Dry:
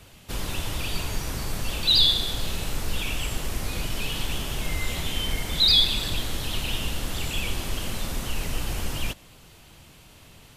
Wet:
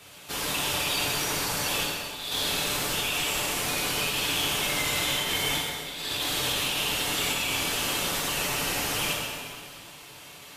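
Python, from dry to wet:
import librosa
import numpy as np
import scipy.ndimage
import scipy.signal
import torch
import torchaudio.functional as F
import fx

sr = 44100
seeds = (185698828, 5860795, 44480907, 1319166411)

y = fx.highpass(x, sr, hz=520.0, slope=6)
y = y + 0.4 * np.pad(y, (int(6.9 * sr / 1000.0), 0))[:len(y)]
y = fx.over_compress(y, sr, threshold_db=-33.0, ratio=-0.5)
y = 10.0 ** (-11.5 / 20.0) * np.tanh(y / 10.0 ** (-11.5 / 20.0))
y = fx.rev_plate(y, sr, seeds[0], rt60_s=2.2, hf_ratio=0.8, predelay_ms=0, drr_db=-4.0)
y = F.gain(torch.from_numpy(y), -1.5).numpy()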